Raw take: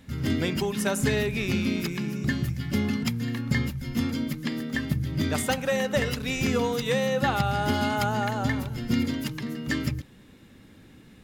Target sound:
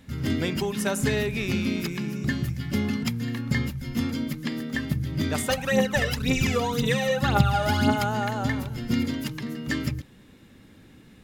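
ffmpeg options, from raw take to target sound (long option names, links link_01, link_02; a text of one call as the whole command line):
ffmpeg -i in.wav -filter_complex "[0:a]asplit=3[link_01][link_02][link_03];[link_01]afade=type=out:start_time=5.49:duration=0.02[link_04];[link_02]aphaser=in_gain=1:out_gain=1:delay=1.8:decay=0.66:speed=1.9:type=triangular,afade=type=in:start_time=5.49:duration=0.02,afade=type=out:start_time=7.95:duration=0.02[link_05];[link_03]afade=type=in:start_time=7.95:duration=0.02[link_06];[link_04][link_05][link_06]amix=inputs=3:normalize=0" out.wav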